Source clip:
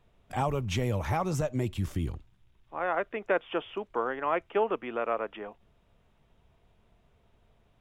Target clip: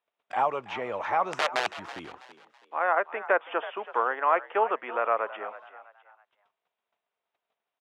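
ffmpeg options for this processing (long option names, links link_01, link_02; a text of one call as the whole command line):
ffmpeg -i in.wav -filter_complex "[0:a]agate=range=-21dB:threshold=-59dB:ratio=16:detection=peak,acrossover=split=2100[link_01][link_02];[link_02]acompressor=threshold=-58dB:ratio=6[link_03];[link_01][link_03]amix=inputs=2:normalize=0,asettb=1/sr,asplit=3[link_04][link_05][link_06];[link_04]atrim=end=1.324[link_07];[link_05]atrim=start=1.32:end=1.75,asetpts=PTS-STARTPTS,afade=type=in:duration=0.004:curve=qsin,afade=type=out:start_time=0.426:duration=0.004:curve=qsin,aeval=exprs='(mod(15.8*val(0)+1,2)-1)/15.8':channel_layout=same[link_08];[link_06]atrim=start=1.746[link_09];[link_07][link_08]acrossfade=duration=0.004:curve1=hsin:curve2=qsin[link_10];[link_10][link_09]acrossfade=duration=0.004:curve1=qsin:curve2=hsin,highpass=720,lowpass=4200,asplit=4[link_11][link_12][link_13][link_14];[link_12]adelay=327,afreqshift=67,volume=-15dB[link_15];[link_13]adelay=654,afreqshift=134,volume=-23.9dB[link_16];[link_14]adelay=981,afreqshift=201,volume=-32.7dB[link_17];[link_11][link_15][link_16][link_17]amix=inputs=4:normalize=0,volume=8dB" out.wav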